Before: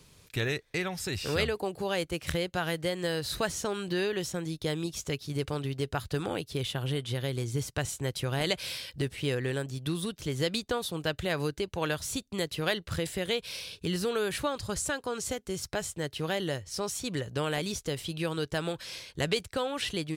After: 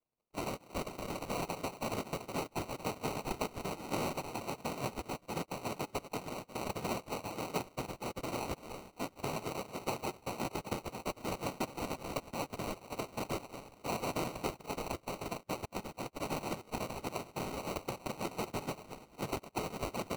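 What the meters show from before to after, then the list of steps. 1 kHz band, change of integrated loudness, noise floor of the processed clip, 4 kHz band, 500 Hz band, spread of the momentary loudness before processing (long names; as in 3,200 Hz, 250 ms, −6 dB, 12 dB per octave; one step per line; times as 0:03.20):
−0.5 dB, −7.5 dB, −65 dBFS, −12.0 dB, −8.0 dB, 4 LU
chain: spectral dynamics exaggerated over time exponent 2
low-shelf EQ 230 Hz −4.5 dB
transient designer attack −1 dB, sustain −6 dB
downward compressor, threshold −40 dBFS, peak gain reduction 12.5 dB
on a send: echo through a band-pass that steps 226 ms, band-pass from 550 Hz, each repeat 0.7 octaves, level −10 dB
on the sum: cochlear-implant simulation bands 2
sample-rate reduction 1,700 Hz, jitter 0%
level +6 dB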